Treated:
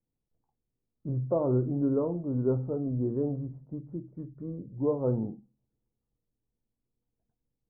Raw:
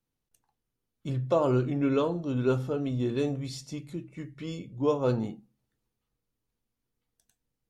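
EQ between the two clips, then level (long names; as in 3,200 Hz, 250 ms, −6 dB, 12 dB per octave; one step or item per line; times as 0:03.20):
Gaussian smoothing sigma 10 samples
0.0 dB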